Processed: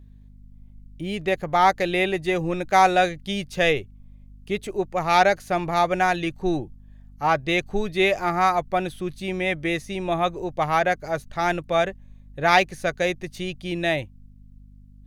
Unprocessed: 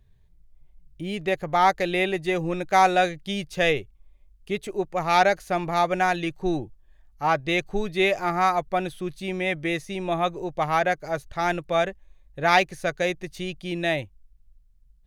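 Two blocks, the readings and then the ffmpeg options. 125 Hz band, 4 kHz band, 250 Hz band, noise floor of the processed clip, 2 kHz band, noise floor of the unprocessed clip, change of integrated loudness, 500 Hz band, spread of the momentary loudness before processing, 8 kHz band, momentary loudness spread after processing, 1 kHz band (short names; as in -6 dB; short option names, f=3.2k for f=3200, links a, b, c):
+1.5 dB, +1.5 dB, +1.5 dB, -49 dBFS, +1.5 dB, -57 dBFS, +1.5 dB, +1.5 dB, 11 LU, +1.5 dB, 11 LU, +1.5 dB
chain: -af "aeval=exprs='val(0)+0.00398*(sin(2*PI*50*n/s)+sin(2*PI*2*50*n/s)/2+sin(2*PI*3*50*n/s)/3+sin(2*PI*4*50*n/s)/4+sin(2*PI*5*50*n/s)/5)':c=same,volume=1.5dB"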